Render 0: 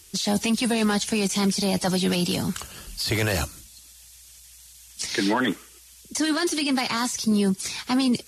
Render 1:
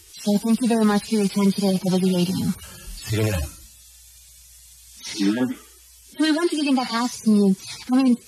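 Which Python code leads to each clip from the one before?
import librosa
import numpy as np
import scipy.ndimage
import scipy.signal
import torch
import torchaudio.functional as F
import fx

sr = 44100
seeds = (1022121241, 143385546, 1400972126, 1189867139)

y = fx.hpss_only(x, sr, part='harmonic')
y = y * librosa.db_to_amplitude(4.5)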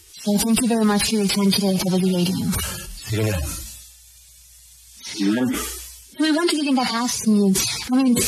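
y = fx.sustainer(x, sr, db_per_s=45.0)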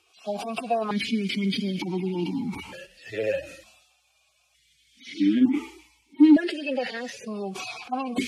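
y = fx.vowel_held(x, sr, hz=1.1)
y = y * librosa.db_to_amplitude(6.5)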